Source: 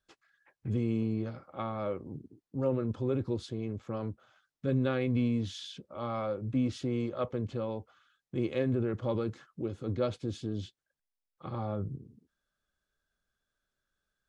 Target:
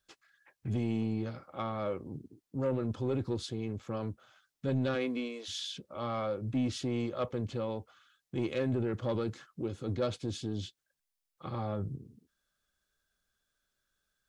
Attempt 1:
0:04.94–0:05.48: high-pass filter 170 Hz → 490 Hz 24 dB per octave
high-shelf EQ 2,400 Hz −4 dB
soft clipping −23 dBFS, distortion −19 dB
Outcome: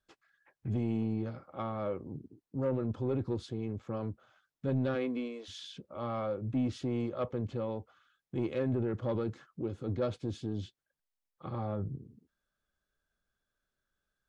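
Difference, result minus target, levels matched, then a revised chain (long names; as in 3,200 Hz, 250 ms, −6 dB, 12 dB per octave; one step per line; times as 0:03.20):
4,000 Hz band −7.0 dB
0:04.94–0:05.48: high-pass filter 170 Hz → 490 Hz 24 dB per octave
high-shelf EQ 2,400 Hz +7 dB
soft clipping −23 dBFS, distortion −18 dB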